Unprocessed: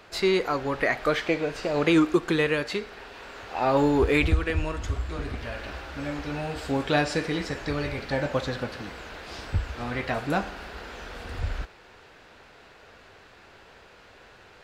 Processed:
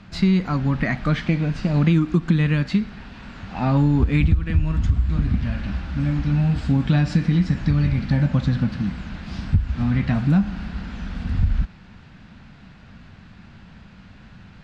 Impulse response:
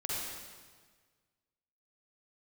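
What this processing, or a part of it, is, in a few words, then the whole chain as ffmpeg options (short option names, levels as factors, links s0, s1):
jukebox: -af "lowpass=6000,lowshelf=f=290:t=q:w=3:g=13.5,acompressor=threshold=0.2:ratio=5"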